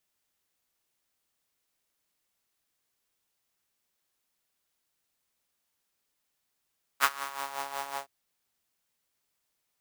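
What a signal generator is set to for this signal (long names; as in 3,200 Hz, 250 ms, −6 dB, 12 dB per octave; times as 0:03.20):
subtractive patch with tremolo C#4, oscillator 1 saw, detune 28 cents, sub 0 dB, noise −7.5 dB, filter highpass, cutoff 650 Hz, filter envelope 1 octave, filter decay 0.57 s, attack 41 ms, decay 0.05 s, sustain −14.5 dB, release 0.10 s, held 0.97 s, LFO 5.4 Hz, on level 9 dB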